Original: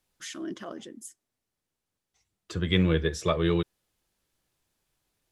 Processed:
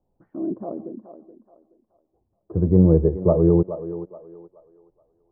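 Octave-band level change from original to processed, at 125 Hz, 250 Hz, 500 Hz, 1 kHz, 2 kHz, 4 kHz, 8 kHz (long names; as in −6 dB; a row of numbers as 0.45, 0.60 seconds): +9.0 dB, +9.0 dB, +9.5 dB, 0.0 dB, below −25 dB, below −40 dB, below −35 dB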